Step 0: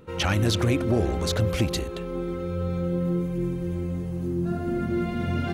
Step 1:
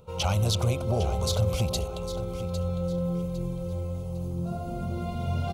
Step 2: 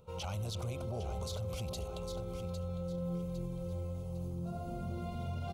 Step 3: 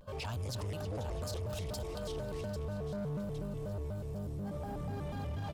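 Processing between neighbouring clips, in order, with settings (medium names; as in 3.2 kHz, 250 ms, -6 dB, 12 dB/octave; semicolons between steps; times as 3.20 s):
static phaser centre 730 Hz, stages 4; on a send: feedback delay 805 ms, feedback 32%, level -12 dB; on the sum: trim +1 dB
peak limiter -24 dBFS, peak gain reduction 10 dB; trim -7 dB
in parallel at -7.5 dB: wavefolder -39.5 dBFS; on the sum: thinning echo 325 ms, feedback 49%, level -13 dB; vibrato with a chosen wave square 4.1 Hz, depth 250 cents; trim -1 dB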